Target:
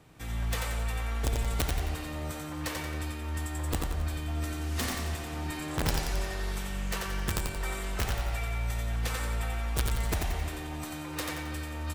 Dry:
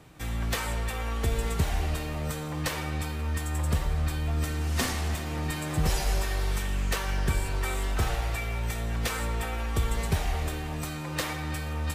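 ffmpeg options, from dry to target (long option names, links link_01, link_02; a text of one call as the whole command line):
ffmpeg -i in.wav -filter_complex "[0:a]asettb=1/sr,asplit=3[link_01][link_02][link_03];[link_01]atrim=end=5.574[link_04];[link_02]atrim=start=5.57:end=6.43,asetpts=PTS-STARTPTS,afade=type=in:duration=0.004:curve=qsin,afade=type=out:start_time=0.856:duration=0.004:curve=qsin,highshelf=frequency=12000:gain=-9.5[link_05];[link_03]atrim=start=6.426[link_06];[link_04][link_05]acrossfade=duration=0.004:curve1=hsin:curve2=qsin[link_07];[link_07][link_06]acrossfade=duration=0.004:curve1=qsin:curve2=hsin,aeval=exprs='(mod(7.08*val(0)+1,2)-1)/7.08':channel_layout=same,aecho=1:1:89|178|267|356|445:0.631|0.271|0.117|0.0502|0.0216,volume=-5dB" out.wav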